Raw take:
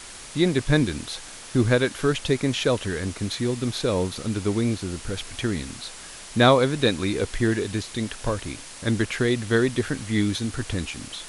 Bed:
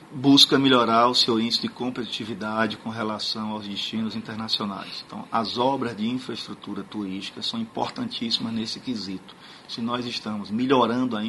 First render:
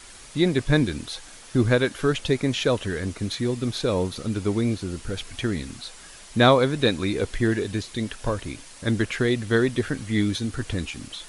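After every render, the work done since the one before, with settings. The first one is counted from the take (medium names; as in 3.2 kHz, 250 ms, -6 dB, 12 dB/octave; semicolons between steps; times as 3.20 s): noise reduction 6 dB, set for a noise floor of -41 dBFS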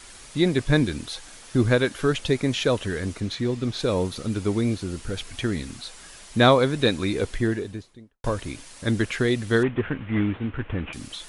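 3.20–3.79 s: distance through air 58 m; 7.21–8.24 s: studio fade out; 9.63–10.93 s: CVSD coder 16 kbps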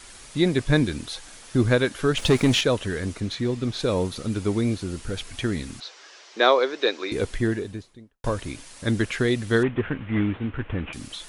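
2.17–2.61 s: waveshaping leveller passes 2; 5.80–7.12 s: elliptic band-pass 370–5800 Hz, stop band 50 dB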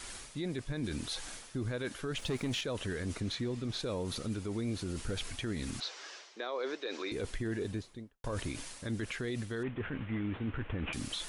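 reverse; compression 6:1, threshold -29 dBFS, peak gain reduction 16 dB; reverse; peak limiter -28 dBFS, peak gain reduction 9.5 dB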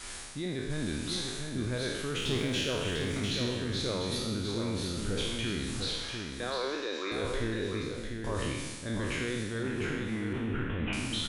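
spectral sustain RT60 1.27 s; delay 698 ms -5.5 dB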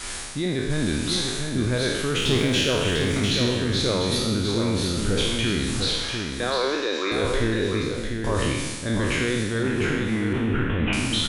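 trim +9.5 dB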